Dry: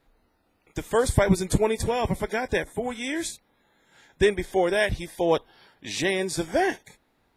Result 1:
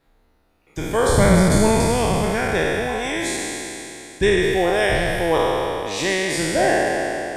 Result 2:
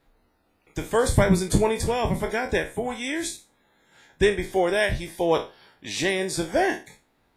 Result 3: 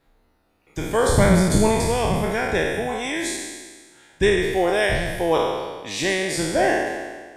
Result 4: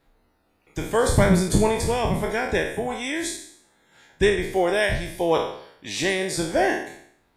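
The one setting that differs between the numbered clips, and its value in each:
spectral trails, RT60: 3.11, 0.3, 1.49, 0.65 s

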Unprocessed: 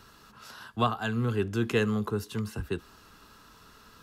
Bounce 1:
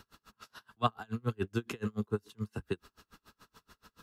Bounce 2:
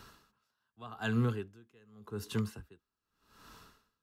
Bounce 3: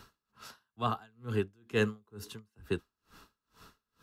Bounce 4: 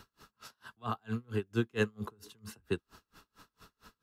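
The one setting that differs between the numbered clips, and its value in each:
dB-linear tremolo, rate: 7, 0.85, 2.2, 4.4 Hz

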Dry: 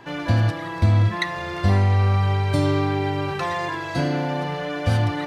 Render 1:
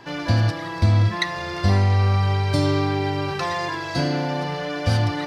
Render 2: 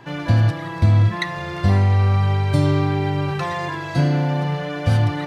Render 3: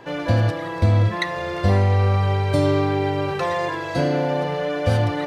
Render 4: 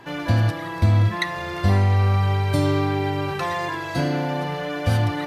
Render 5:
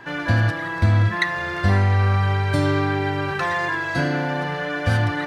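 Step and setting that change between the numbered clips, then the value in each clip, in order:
bell, frequency: 5000, 140, 510, 13000, 1600 Hz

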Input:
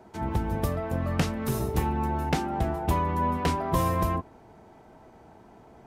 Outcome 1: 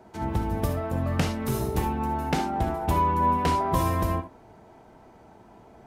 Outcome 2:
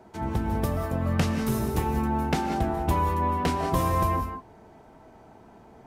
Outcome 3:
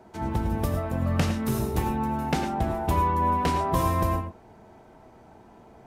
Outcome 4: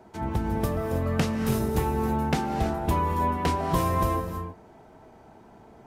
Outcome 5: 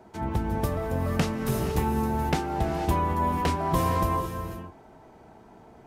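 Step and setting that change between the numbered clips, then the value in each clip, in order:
non-linear reverb, gate: 90, 220, 130, 350, 530 ms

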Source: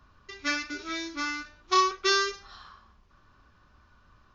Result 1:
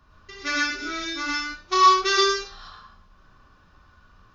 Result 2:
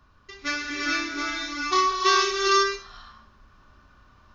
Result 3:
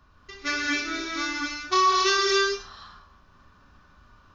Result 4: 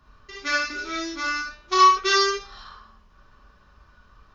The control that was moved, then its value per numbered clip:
non-linear reverb, gate: 150, 480, 290, 90 ms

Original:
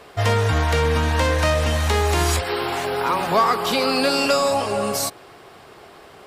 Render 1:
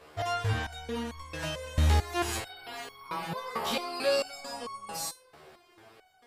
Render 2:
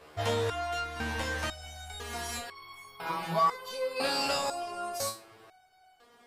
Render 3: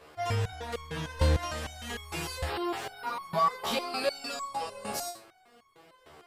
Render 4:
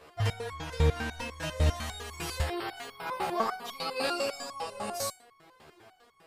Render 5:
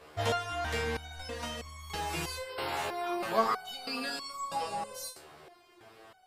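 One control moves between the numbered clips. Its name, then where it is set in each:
stepped resonator, rate: 4.5, 2, 6.6, 10, 3.1 Hz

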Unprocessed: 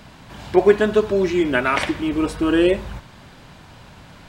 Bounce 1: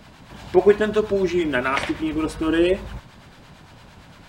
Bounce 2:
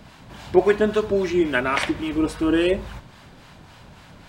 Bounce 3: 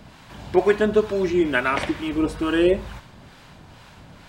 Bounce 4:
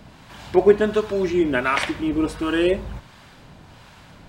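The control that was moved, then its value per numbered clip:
harmonic tremolo, rate: 8.8, 3.6, 2.2, 1.4 Hz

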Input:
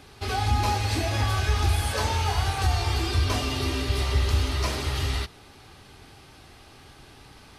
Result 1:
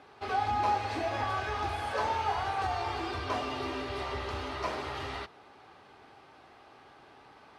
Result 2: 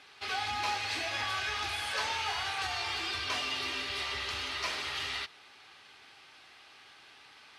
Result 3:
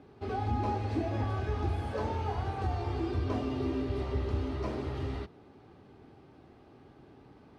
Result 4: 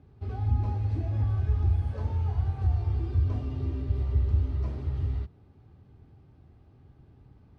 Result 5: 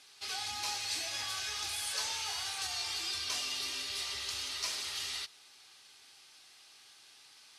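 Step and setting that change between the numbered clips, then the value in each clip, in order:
band-pass, frequency: 830, 2400, 290, 100, 6400 Hz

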